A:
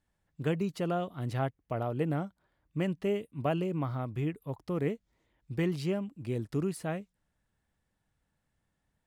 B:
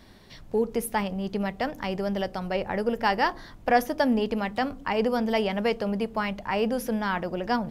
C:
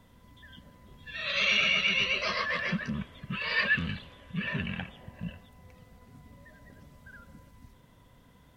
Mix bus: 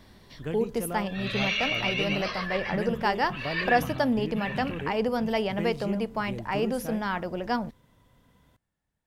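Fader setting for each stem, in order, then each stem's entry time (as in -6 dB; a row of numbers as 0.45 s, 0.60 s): -4.0 dB, -2.0 dB, -3.0 dB; 0.00 s, 0.00 s, 0.00 s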